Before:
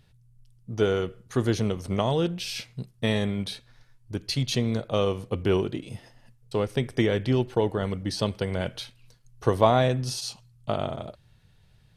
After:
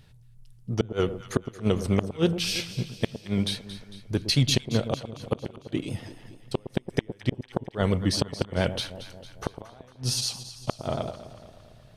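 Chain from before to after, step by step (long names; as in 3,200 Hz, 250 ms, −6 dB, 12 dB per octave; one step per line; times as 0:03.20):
gate with flip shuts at −14 dBFS, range −37 dB
pitch vibrato 8.5 Hz 49 cents
delay that swaps between a low-pass and a high-pass 113 ms, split 940 Hz, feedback 73%, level −11 dB
level +5 dB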